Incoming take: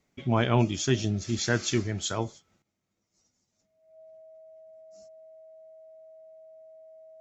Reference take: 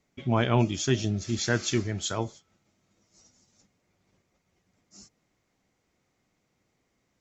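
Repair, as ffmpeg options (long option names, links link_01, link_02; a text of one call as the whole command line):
ffmpeg -i in.wav -af "bandreject=frequency=640:width=30,asetnsamples=nb_out_samples=441:pad=0,asendcmd='2.62 volume volume 11.5dB',volume=0dB" out.wav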